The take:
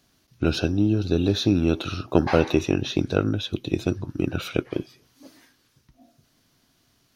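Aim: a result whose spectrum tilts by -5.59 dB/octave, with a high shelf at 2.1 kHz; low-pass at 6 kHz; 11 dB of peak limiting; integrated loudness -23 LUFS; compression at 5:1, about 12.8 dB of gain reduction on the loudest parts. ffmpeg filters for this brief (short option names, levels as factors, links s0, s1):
-af "lowpass=6000,highshelf=f=2100:g=-6.5,acompressor=threshold=0.0398:ratio=5,volume=5.62,alimiter=limit=0.299:level=0:latency=1"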